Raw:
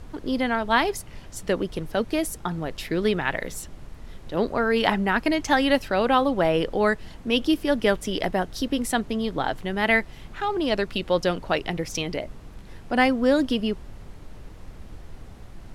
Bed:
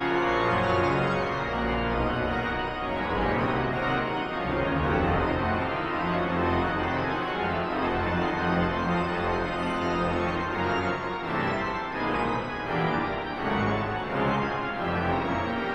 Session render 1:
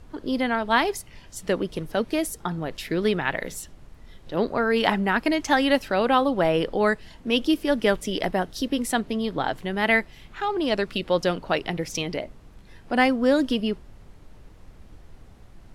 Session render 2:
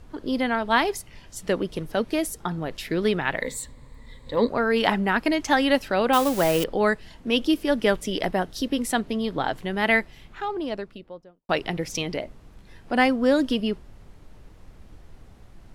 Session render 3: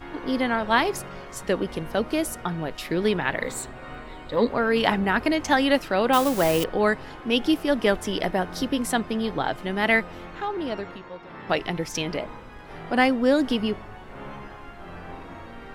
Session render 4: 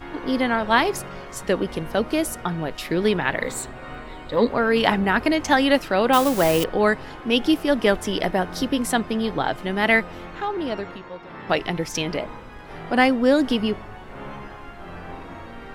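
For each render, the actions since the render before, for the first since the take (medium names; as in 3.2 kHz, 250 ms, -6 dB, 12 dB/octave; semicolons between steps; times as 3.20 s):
noise print and reduce 6 dB
3.42–4.49 s: rippled EQ curve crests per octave 1, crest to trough 13 dB; 6.13–6.64 s: zero-crossing glitches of -18.5 dBFS; 9.98–11.49 s: studio fade out
add bed -13.5 dB
trim +2.5 dB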